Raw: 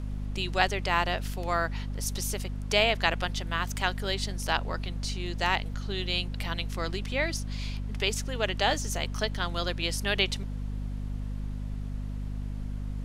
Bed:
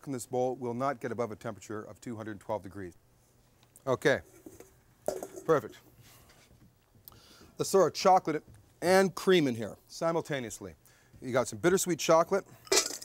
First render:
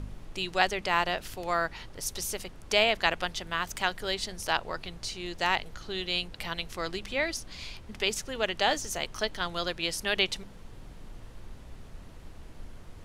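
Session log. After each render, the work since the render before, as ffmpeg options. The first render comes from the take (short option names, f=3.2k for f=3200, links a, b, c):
-af "bandreject=f=50:t=h:w=4,bandreject=f=100:t=h:w=4,bandreject=f=150:t=h:w=4,bandreject=f=200:t=h:w=4,bandreject=f=250:t=h:w=4"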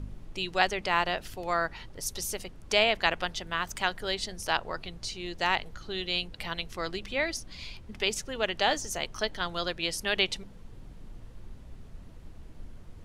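-af "afftdn=nr=6:nf=-48"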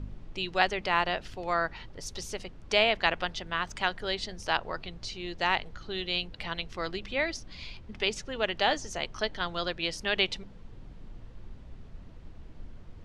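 -af "lowpass=5.2k"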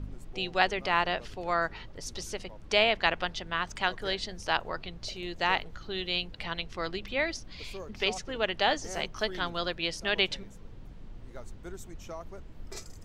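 -filter_complex "[1:a]volume=-18.5dB[a];[0:a][a]amix=inputs=2:normalize=0"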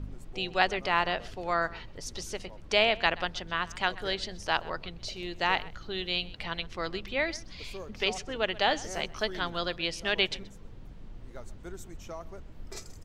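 -filter_complex "[0:a]asplit=2[a][b];[b]adelay=128.3,volume=-20dB,highshelf=f=4k:g=-2.89[c];[a][c]amix=inputs=2:normalize=0"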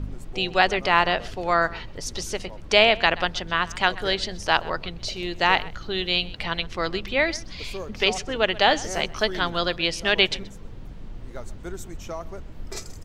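-af "volume=7.5dB,alimiter=limit=-2dB:level=0:latency=1"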